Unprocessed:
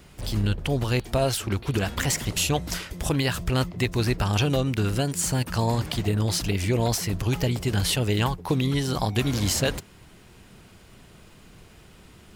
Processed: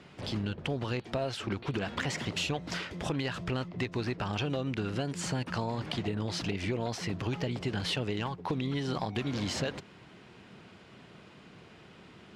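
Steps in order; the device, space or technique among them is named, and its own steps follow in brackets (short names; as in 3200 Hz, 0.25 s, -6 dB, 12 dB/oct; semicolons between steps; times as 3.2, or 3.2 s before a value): AM radio (BPF 140–3900 Hz; compressor, threshold -28 dBFS, peak gain reduction 9 dB; soft clip -19.5 dBFS, distortion -23 dB)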